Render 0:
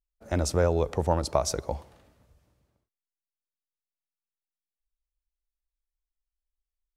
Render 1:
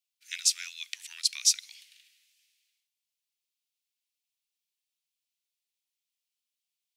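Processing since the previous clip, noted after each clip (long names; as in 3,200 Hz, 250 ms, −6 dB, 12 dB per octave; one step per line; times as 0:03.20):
Butterworth high-pass 2,300 Hz 36 dB per octave
parametric band 3,200 Hz +5 dB 2.2 octaves
level +6.5 dB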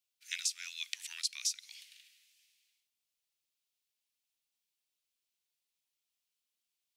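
downward compressor 6 to 1, threshold −32 dBFS, peak gain reduction 14 dB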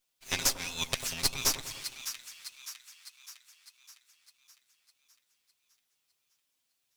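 lower of the sound and its delayed copy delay 7.5 ms
on a send: echo with a time of its own for lows and highs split 1,200 Hz, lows 96 ms, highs 606 ms, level −10 dB
on the sum: level +8.5 dB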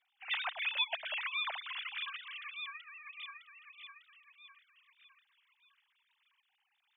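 three sine waves on the formant tracks
downward compressor 2 to 1, threshold −46 dBFS, peak gain reduction 14 dB
level +5 dB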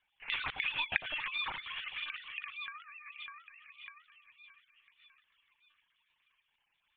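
one-pitch LPC vocoder at 8 kHz 300 Hz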